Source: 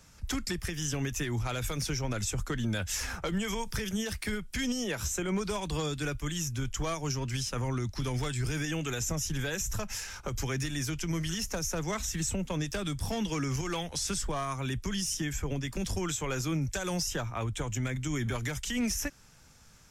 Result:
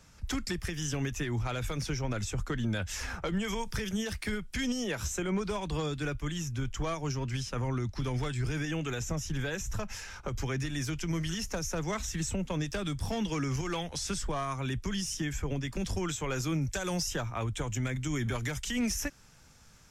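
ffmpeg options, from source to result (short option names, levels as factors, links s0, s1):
-af "asetnsamples=n=441:p=0,asendcmd='1.09 lowpass f 3800;3.44 lowpass f 6400;5.28 lowpass f 3300;10.74 lowpass f 5600;16.35 lowpass f 11000',lowpass=f=6600:p=1"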